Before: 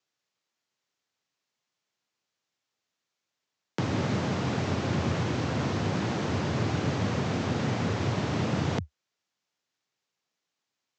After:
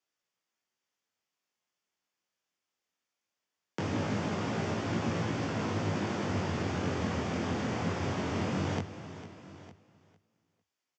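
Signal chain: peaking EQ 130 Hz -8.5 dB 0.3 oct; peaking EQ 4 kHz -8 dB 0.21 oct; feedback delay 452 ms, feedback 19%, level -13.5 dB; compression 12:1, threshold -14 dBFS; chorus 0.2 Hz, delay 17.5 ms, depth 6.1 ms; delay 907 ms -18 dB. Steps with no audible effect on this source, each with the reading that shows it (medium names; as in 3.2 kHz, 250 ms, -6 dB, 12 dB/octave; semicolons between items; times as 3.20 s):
compression, threshold -14 dBFS: peak at its input -16.0 dBFS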